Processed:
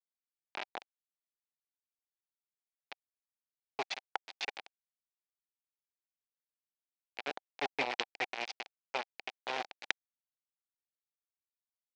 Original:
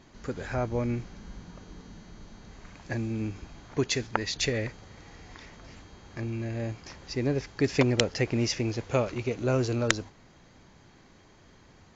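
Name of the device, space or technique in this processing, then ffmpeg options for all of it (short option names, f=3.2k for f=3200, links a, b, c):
hand-held game console: -af "equalizer=f=550:t=o:w=2.2:g=-5.5,acrusher=bits=3:mix=0:aa=0.000001,highpass=440,equalizer=f=780:t=q:w=4:g=8,equalizer=f=1.2k:t=q:w=4:g=-4,equalizer=f=2.4k:t=q:w=4:g=5,lowpass=f=4.7k:w=0.5412,lowpass=f=4.7k:w=1.3066,volume=-7.5dB"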